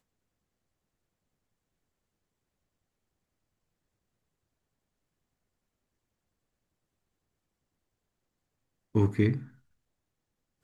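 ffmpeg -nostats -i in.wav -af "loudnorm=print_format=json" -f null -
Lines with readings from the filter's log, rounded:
"input_i" : "-28.6",
"input_tp" : "-12.8",
"input_lra" : "8.3",
"input_thresh" : "-39.5",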